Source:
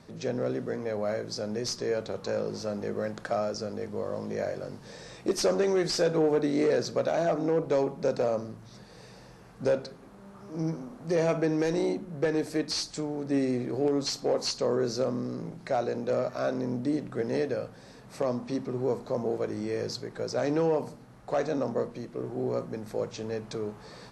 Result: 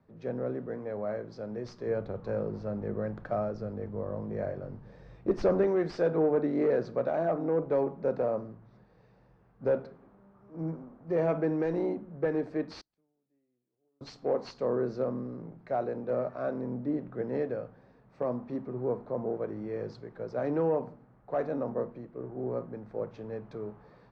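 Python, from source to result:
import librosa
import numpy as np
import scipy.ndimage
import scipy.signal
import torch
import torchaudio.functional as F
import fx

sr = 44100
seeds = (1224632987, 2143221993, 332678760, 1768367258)

y = fx.low_shelf(x, sr, hz=130.0, db=11.5, at=(1.86, 5.67))
y = fx.gate_flip(y, sr, shuts_db=-34.0, range_db=-35, at=(12.81, 14.01))
y = scipy.signal.sosfilt(scipy.signal.butter(2, 1600.0, 'lowpass', fs=sr, output='sos'), y)
y = fx.band_widen(y, sr, depth_pct=40)
y = y * librosa.db_to_amplitude(-2.5)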